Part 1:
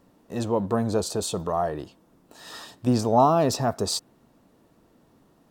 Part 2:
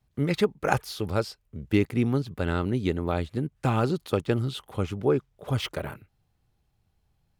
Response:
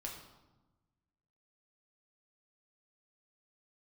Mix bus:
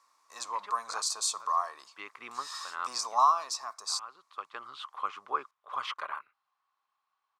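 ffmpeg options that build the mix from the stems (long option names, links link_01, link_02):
-filter_complex "[0:a]equalizer=frequency=2300:width_type=o:width=0.5:gain=12,aexciter=amount=12.8:drive=2.8:freq=4300,volume=-12.5dB,afade=type=out:start_time=3.23:duration=0.21:silence=0.446684,asplit=2[link_01][link_02];[1:a]adelay=250,volume=-6dB[link_03];[link_02]apad=whole_len=337254[link_04];[link_03][link_04]sidechaincompress=threshold=-43dB:ratio=16:attack=16:release=639[link_05];[link_01][link_05]amix=inputs=2:normalize=0,highpass=frequency=1100:width_type=q:width=11,lowpass=5400"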